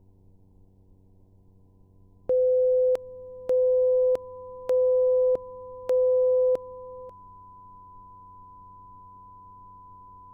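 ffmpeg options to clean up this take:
-af "bandreject=f=94.8:t=h:w=4,bandreject=f=189.6:t=h:w=4,bandreject=f=284.4:t=h:w=4,bandreject=f=379.2:t=h:w=4,bandreject=f=474:t=h:w=4,bandreject=f=1000:w=30,agate=range=0.0891:threshold=0.00355"

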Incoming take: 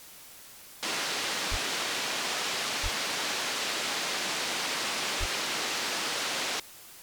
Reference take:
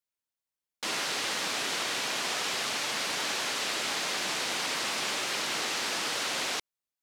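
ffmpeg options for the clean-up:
-filter_complex "[0:a]adeclick=t=4,asplit=3[s0][s1][s2];[s0]afade=t=out:st=1.5:d=0.02[s3];[s1]highpass=f=140:w=0.5412,highpass=f=140:w=1.3066,afade=t=in:st=1.5:d=0.02,afade=t=out:st=1.62:d=0.02[s4];[s2]afade=t=in:st=1.62:d=0.02[s5];[s3][s4][s5]amix=inputs=3:normalize=0,asplit=3[s6][s7][s8];[s6]afade=t=out:st=2.82:d=0.02[s9];[s7]highpass=f=140:w=0.5412,highpass=f=140:w=1.3066,afade=t=in:st=2.82:d=0.02,afade=t=out:st=2.94:d=0.02[s10];[s8]afade=t=in:st=2.94:d=0.02[s11];[s9][s10][s11]amix=inputs=3:normalize=0,asplit=3[s12][s13][s14];[s12]afade=t=out:st=5.19:d=0.02[s15];[s13]highpass=f=140:w=0.5412,highpass=f=140:w=1.3066,afade=t=in:st=5.19:d=0.02,afade=t=out:st=5.31:d=0.02[s16];[s14]afade=t=in:st=5.31:d=0.02[s17];[s15][s16][s17]amix=inputs=3:normalize=0,afwtdn=0.0035"

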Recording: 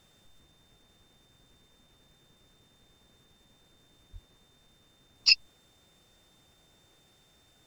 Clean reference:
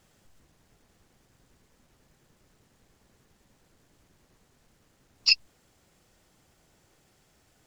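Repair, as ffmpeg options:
-filter_complex "[0:a]bandreject=f=3600:w=30,asplit=3[s0][s1][s2];[s0]afade=t=out:st=4.12:d=0.02[s3];[s1]highpass=f=140:w=0.5412,highpass=f=140:w=1.3066,afade=t=in:st=4.12:d=0.02,afade=t=out:st=4.24:d=0.02[s4];[s2]afade=t=in:st=4.24:d=0.02[s5];[s3][s4][s5]amix=inputs=3:normalize=0"

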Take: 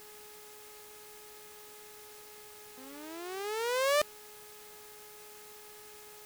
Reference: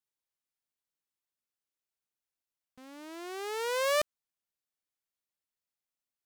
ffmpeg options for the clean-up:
-af "bandreject=f=421.4:t=h:w=4,bandreject=f=842.8:t=h:w=4,bandreject=f=1264.2:t=h:w=4,bandreject=f=1685.6:t=h:w=4,bandreject=f=2107:t=h:w=4,bandreject=f=2528.4:t=h:w=4,afwtdn=0.0022"

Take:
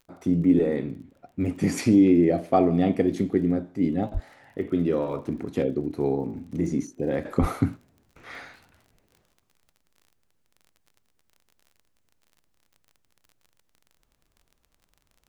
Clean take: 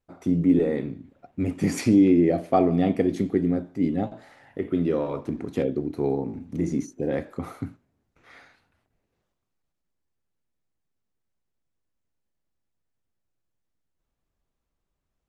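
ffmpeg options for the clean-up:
-filter_complex "[0:a]adeclick=t=4,asplit=3[s0][s1][s2];[s0]afade=t=out:st=4.13:d=0.02[s3];[s1]highpass=f=140:w=0.5412,highpass=f=140:w=1.3066,afade=t=in:st=4.13:d=0.02,afade=t=out:st=4.25:d=0.02[s4];[s2]afade=t=in:st=4.25:d=0.02[s5];[s3][s4][s5]amix=inputs=3:normalize=0,asplit=3[s6][s7][s8];[s6]afade=t=out:st=7.4:d=0.02[s9];[s7]highpass=f=140:w=0.5412,highpass=f=140:w=1.3066,afade=t=in:st=7.4:d=0.02,afade=t=out:st=7.52:d=0.02[s10];[s8]afade=t=in:st=7.52:d=0.02[s11];[s9][s10][s11]amix=inputs=3:normalize=0,asetnsamples=n=441:p=0,asendcmd='7.25 volume volume -9.5dB',volume=1"

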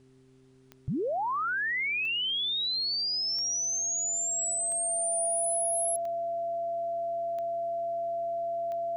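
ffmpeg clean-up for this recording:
-af "adeclick=t=4,bandreject=f=130.6:t=h:w=4,bandreject=f=261.2:t=h:w=4,bandreject=f=391.8:t=h:w=4,bandreject=f=680:w=30,agate=range=0.0891:threshold=0.0631"

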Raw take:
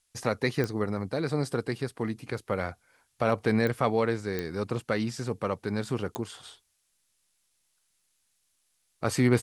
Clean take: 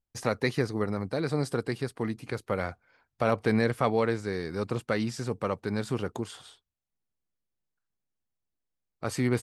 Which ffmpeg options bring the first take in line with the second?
-af "adeclick=t=4,agate=range=0.0891:threshold=0.000501,asetnsamples=n=441:p=0,asendcmd='6.43 volume volume -4dB',volume=1"

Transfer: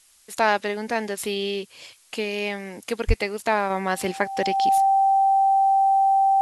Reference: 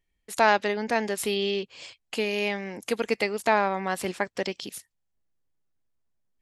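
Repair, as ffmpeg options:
-filter_complex "[0:a]bandreject=f=780:w=30,asplit=3[s0][s1][s2];[s0]afade=t=out:st=3.07:d=0.02[s3];[s1]highpass=f=140:w=0.5412,highpass=f=140:w=1.3066,afade=t=in:st=3.07:d=0.02,afade=t=out:st=3.19:d=0.02[s4];[s2]afade=t=in:st=3.19:d=0.02[s5];[s3][s4][s5]amix=inputs=3:normalize=0,agate=range=0.0891:threshold=0.00794,asetnsamples=n=441:p=0,asendcmd='3.7 volume volume -4dB',volume=1"

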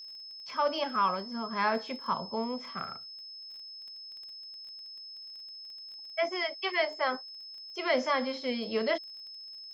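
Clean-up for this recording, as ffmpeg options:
-af "adeclick=t=4,bandreject=f=5200:w=30"

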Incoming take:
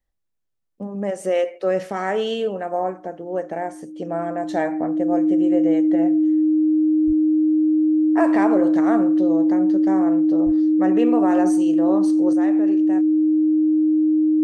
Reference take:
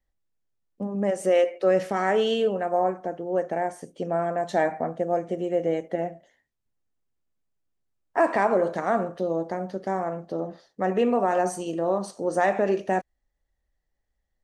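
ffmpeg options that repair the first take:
-filter_complex "[0:a]bandreject=f=310:w=30,asplit=3[s0][s1][s2];[s0]afade=t=out:st=7.06:d=0.02[s3];[s1]highpass=f=140:w=0.5412,highpass=f=140:w=1.3066,afade=t=in:st=7.06:d=0.02,afade=t=out:st=7.18:d=0.02[s4];[s2]afade=t=in:st=7.18:d=0.02[s5];[s3][s4][s5]amix=inputs=3:normalize=0,asplit=3[s6][s7][s8];[s6]afade=t=out:st=10.45:d=0.02[s9];[s7]highpass=f=140:w=0.5412,highpass=f=140:w=1.3066,afade=t=in:st=10.45:d=0.02,afade=t=out:st=10.57:d=0.02[s10];[s8]afade=t=in:st=10.57:d=0.02[s11];[s9][s10][s11]amix=inputs=3:normalize=0,asetnsamples=n=441:p=0,asendcmd='12.33 volume volume 10dB',volume=1"

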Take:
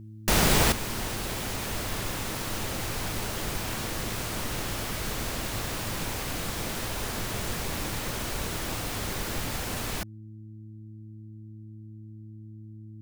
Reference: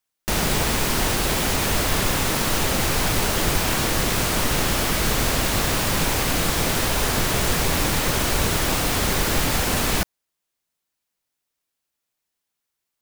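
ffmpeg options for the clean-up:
-af "bandreject=f=108.2:t=h:w=4,bandreject=f=216.4:t=h:w=4,bandreject=f=324.6:t=h:w=4,asetnsamples=n=441:p=0,asendcmd='0.72 volume volume 11dB',volume=1"

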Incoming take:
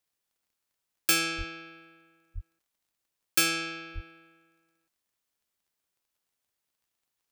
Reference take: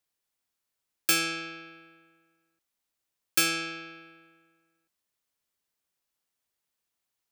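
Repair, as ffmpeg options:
-filter_complex "[0:a]adeclick=t=4,asplit=3[s0][s1][s2];[s0]afade=t=out:st=1.37:d=0.02[s3];[s1]highpass=f=140:w=0.5412,highpass=f=140:w=1.3066,afade=t=in:st=1.37:d=0.02,afade=t=out:st=1.49:d=0.02[s4];[s2]afade=t=in:st=1.49:d=0.02[s5];[s3][s4][s5]amix=inputs=3:normalize=0,asplit=3[s6][s7][s8];[s6]afade=t=out:st=2.34:d=0.02[s9];[s7]highpass=f=140:w=0.5412,highpass=f=140:w=1.3066,afade=t=in:st=2.34:d=0.02,afade=t=out:st=2.46:d=0.02[s10];[s8]afade=t=in:st=2.46:d=0.02[s11];[s9][s10][s11]amix=inputs=3:normalize=0,asplit=3[s12][s13][s14];[s12]afade=t=out:st=3.94:d=0.02[s15];[s13]highpass=f=140:w=0.5412,highpass=f=140:w=1.3066,afade=t=in:st=3.94:d=0.02,afade=t=out:st=4.06:d=0.02[s16];[s14]afade=t=in:st=4.06:d=0.02[s17];[s15][s16][s17]amix=inputs=3:normalize=0"

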